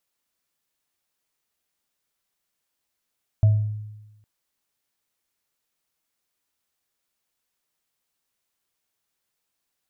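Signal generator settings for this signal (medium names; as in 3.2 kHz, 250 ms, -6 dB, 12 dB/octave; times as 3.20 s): sine partials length 0.81 s, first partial 106 Hz, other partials 646 Hz, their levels -20 dB, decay 1.09 s, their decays 0.43 s, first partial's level -11 dB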